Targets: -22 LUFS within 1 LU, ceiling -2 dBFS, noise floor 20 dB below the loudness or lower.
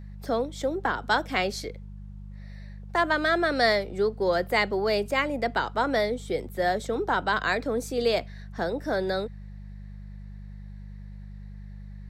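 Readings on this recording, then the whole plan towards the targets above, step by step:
hum 50 Hz; harmonics up to 200 Hz; hum level -38 dBFS; loudness -26.5 LUFS; peak -9.5 dBFS; loudness target -22.0 LUFS
-> de-hum 50 Hz, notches 4; gain +4.5 dB

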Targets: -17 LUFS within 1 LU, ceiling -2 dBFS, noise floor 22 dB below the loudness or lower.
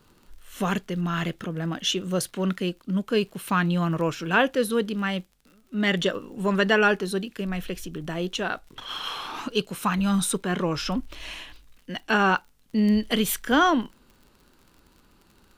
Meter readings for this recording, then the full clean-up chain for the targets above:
ticks 49/s; loudness -25.5 LUFS; peak -6.5 dBFS; loudness target -17.0 LUFS
-> de-click; gain +8.5 dB; limiter -2 dBFS

